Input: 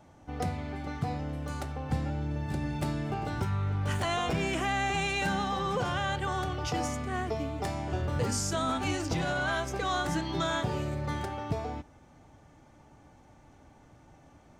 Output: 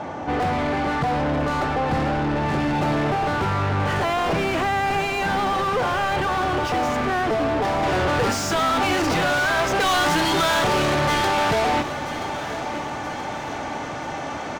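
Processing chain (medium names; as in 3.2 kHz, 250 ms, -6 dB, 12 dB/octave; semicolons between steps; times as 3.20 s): low-pass 6.7 kHz; overdrive pedal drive 36 dB, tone 1.1 kHz, clips at -18 dBFS, from 7.83 s tone 2.3 kHz, from 9.80 s tone 4.9 kHz; feedback delay 979 ms, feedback 51%, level -13 dB; trim +4 dB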